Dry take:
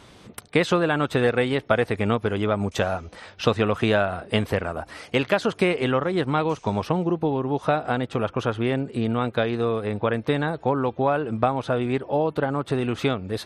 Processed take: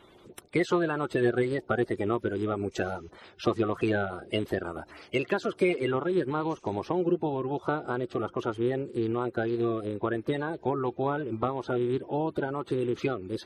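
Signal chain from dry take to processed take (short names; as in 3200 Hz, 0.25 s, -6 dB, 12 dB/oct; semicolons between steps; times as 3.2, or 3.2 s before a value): bin magnitudes rounded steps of 30 dB; bell 360 Hz +10.5 dB 0.36 oct; gain -8 dB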